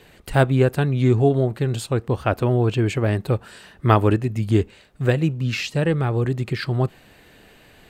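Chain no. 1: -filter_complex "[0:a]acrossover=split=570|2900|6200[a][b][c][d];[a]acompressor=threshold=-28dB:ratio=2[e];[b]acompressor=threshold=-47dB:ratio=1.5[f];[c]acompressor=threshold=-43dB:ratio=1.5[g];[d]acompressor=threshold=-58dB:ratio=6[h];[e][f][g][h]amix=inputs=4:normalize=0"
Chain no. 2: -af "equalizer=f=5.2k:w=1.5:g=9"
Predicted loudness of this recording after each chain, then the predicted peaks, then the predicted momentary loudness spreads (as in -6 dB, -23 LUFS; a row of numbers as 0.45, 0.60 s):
-27.5, -21.0 LUFS; -10.0, -2.0 dBFS; 6, 7 LU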